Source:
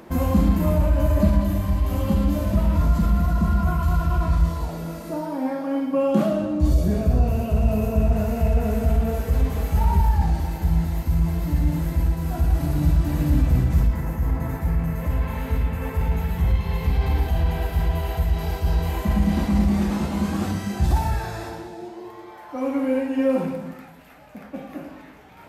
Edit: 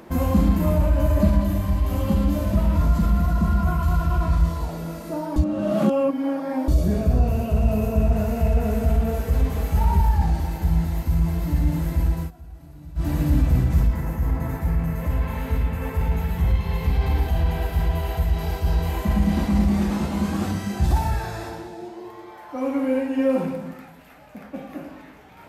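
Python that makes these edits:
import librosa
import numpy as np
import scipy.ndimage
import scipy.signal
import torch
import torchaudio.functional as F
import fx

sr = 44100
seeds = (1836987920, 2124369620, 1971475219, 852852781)

y = fx.edit(x, sr, fx.reverse_span(start_s=5.36, length_s=1.32),
    fx.fade_down_up(start_s=12.18, length_s=0.9, db=-21.0, fade_s=0.13, curve='qsin'), tone=tone)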